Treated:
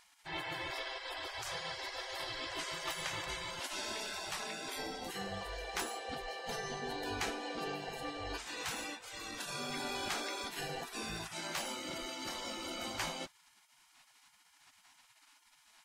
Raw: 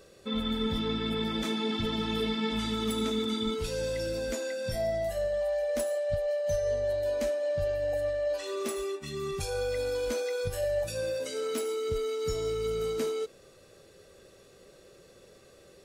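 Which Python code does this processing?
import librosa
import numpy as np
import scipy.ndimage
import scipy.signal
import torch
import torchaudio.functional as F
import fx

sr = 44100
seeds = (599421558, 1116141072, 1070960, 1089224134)

y = fx.spec_gate(x, sr, threshold_db=-25, keep='weak')
y = fx.lowpass(y, sr, hz=2900.0, slope=6)
y = y * 10.0 ** (9.5 / 20.0)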